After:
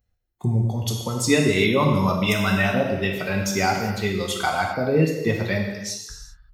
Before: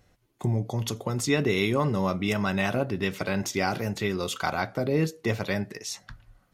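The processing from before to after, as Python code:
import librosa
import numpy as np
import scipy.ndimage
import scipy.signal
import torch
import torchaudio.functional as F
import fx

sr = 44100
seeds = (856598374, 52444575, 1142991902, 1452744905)

y = fx.bin_expand(x, sr, power=1.5)
y = fx.high_shelf(y, sr, hz=3400.0, db=9.5, at=(1.77, 2.57))
y = fx.rev_gated(y, sr, seeds[0], gate_ms=420, shape='falling', drr_db=0.0)
y = F.gain(torch.from_numpy(y), 5.5).numpy()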